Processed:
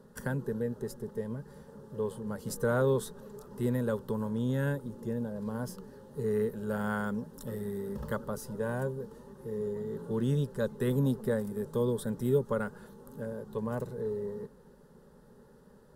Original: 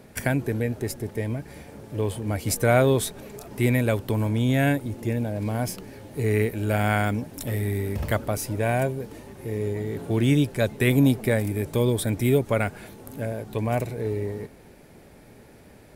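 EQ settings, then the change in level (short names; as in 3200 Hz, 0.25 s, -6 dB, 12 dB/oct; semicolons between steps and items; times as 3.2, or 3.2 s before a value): high shelf 3300 Hz -10 dB; fixed phaser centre 460 Hz, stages 8; -4.0 dB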